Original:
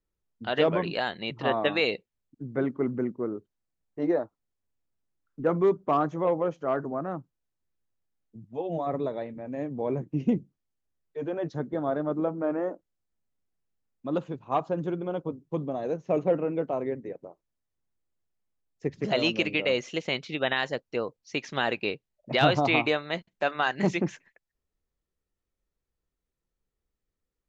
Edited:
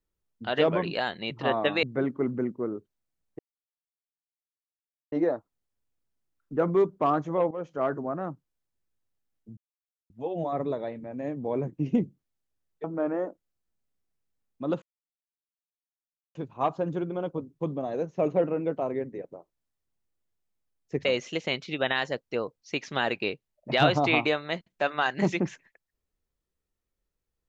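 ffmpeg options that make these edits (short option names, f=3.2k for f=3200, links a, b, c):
-filter_complex "[0:a]asplit=8[a][b][c][d][e][f][g][h];[a]atrim=end=1.832[i];[b]atrim=start=2.428:end=3.99,asetpts=PTS-STARTPTS,afade=t=out:st=1.558:d=0.004:c=hsin,apad=pad_dur=1.73[j];[c]atrim=start=3.99:end=6.38,asetpts=PTS-STARTPTS,afade=t=in:d=0.004:c=hsin,afade=t=out:st=2.386:d=0.004:c=hsin:silence=0.223872[k];[d]atrim=start=6.38:end=8.44,asetpts=PTS-STARTPTS,afade=t=in:d=0.26:silence=0.223872,afade=t=out:st=2.056:d=0.004:c=hsin,apad=pad_dur=0.53[l];[e]atrim=start=8.44:end=11.182,asetpts=PTS-STARTPTS,afade=t=in:d=0.004:c=hsin[m];[f]atrim=start=12.278:end=14.26,asetpts=PTS-STARTPTS,afade=t=out:st=1.978:d=0.004:c=hsin,apad=pad_dur=1.53[n];[g]atrim=start=14.26:end=18.962,asetpts=PTS-STARTPTS,afade=t=in:d=0.004:c=hsin[o];[h]atrim=start=19.658[p];[j][k][l][m]concat=n=4:v=0:a=1[q];[i][q]acrossfade=d=0.004:c1=hsin:c2=hsin[r];[n][o]concat=n=2:v=0:a=1[s];[r][s]acrossfade=d=0.004:c1=hsin:c2=hsin[t];[t][p]acrossfade=d=0.004:c1=hsin:c2=hsin"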